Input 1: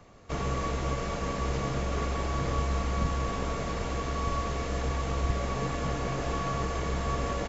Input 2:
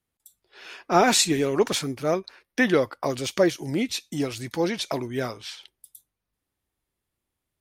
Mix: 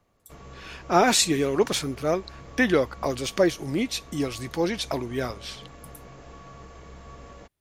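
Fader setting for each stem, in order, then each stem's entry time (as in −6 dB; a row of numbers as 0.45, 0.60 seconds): −14.5, −0.5 decibels; 0.00, 0.00 seconds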